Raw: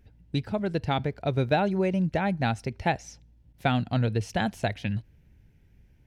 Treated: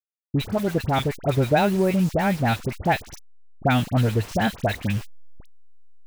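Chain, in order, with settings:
hold until the input has moved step −37 dBFS
all-pass dispersion highs, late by 59 ms, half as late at 1,500 Hz
level +5 dB

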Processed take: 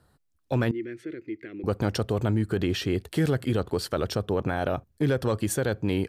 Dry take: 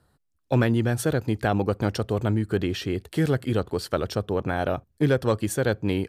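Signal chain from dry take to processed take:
brickwall limiter −17.5 dBFS, peak gain reduction 6 dB
0:00.71–0:01.64: pair of resonant band-passes 840 Hz, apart 2.6 octaves
level +1.5 dB

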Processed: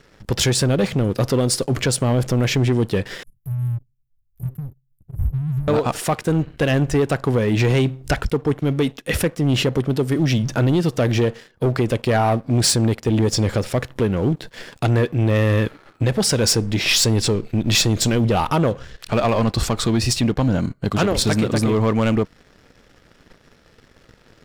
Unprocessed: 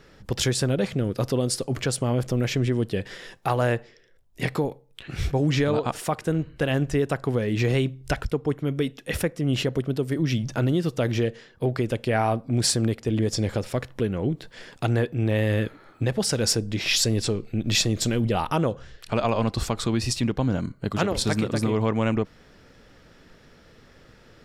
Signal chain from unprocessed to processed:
0:03.23–0:05.68: inverse Chebyshev band-stop filter 510–4,200 Hz, stop band 70 dB
leveller curve on the samples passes 2

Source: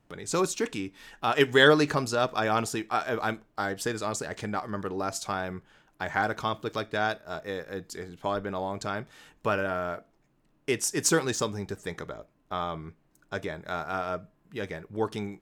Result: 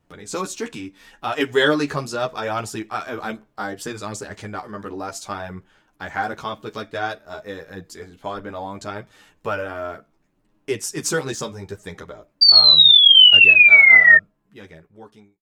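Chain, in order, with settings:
fade-out on the ending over 1.70 s
sound drawn into the spectrogram fall, 0:12.41–0:14.18, 1,800–4,700 Hz −11 dBFS
multi-voice chorus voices 2, 0.71 Hz, delay 12 ms, depth 2.4 ms
level +4 dB

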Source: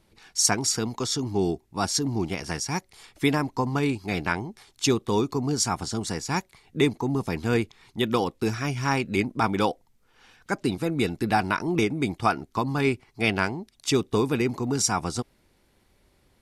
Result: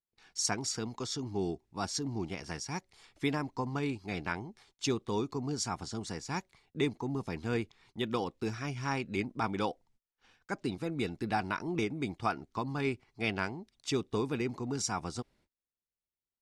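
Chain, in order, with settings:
noise gate −55 dBFS, range −32 dB
low-pass filter 7,800 Hz 12 dB per octave
level −9 dB

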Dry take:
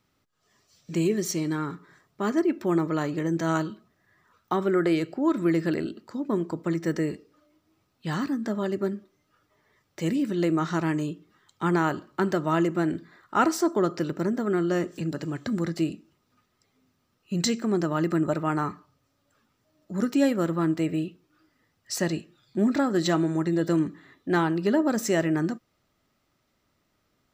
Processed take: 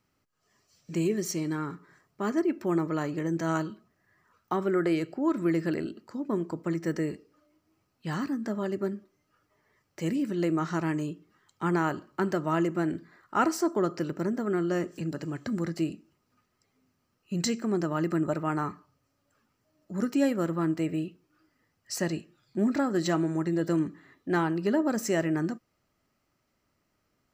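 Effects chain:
parametric band 3,600 Hz −9 dB 0.21 octaves
level −3 dB

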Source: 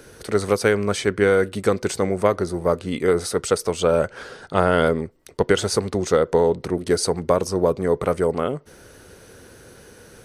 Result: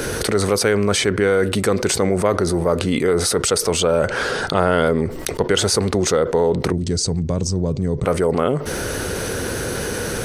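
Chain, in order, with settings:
0:06.72–0:08.05: drawn EQ curve 140 Hz 0 dB, 440 Hz −16 dB, 1,300 Hz −22 dB, 7,500 Hz −6 dB, 11,000 Hz −27 dB
envelope flattener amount 70%
level −1.5 dB

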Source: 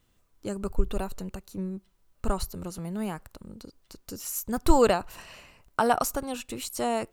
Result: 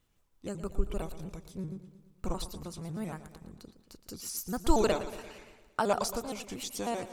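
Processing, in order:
pitch shifter gated in a rhythm −3 semitones, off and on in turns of 78 ms
dynamic equaliser 4,900 Hz, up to +5 dB, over −51 dBFS, Q 2.1
feedback echo with a swinging delay time 115 ms, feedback 57%, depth 69 cents, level −13 dB
level −5 dB

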